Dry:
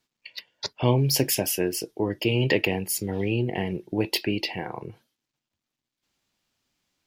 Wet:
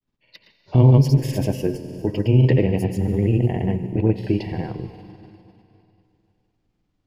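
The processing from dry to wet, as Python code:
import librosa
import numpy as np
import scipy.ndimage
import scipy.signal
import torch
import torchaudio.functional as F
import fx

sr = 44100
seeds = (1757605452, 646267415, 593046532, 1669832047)

y = fx.tilt_eq(x, sr, slope=-4.0)
y = fx.rev_schroeder(y, sr, rt60_s=2.8, comb_ms=33, drr_db=9.5)
y = fx.granulator(y, sr, seeds[0], grain_ms=100.0, per_s=20.0, spray_ms=100.0, spread_st=0)
y = F.gain(torch.from_numpy(y), -1.0).numpy()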